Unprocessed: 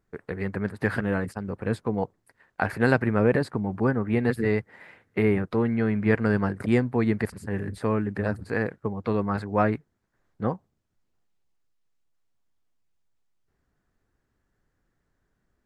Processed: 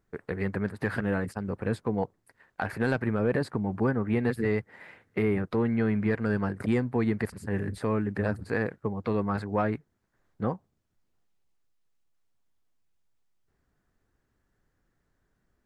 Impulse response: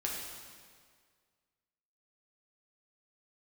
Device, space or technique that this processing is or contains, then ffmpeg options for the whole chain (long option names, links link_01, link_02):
soft clipper into limiter: -af "asoftclip=type=tanh:threshold=-9.5dB,alimiter=limit=-16dB:level=0:latency=1:release=326"